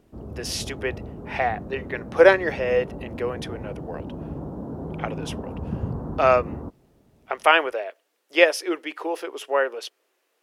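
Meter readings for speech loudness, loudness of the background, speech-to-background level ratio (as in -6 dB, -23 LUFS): -23.0 LUFS, -35.0 LUFS, 12.0 dB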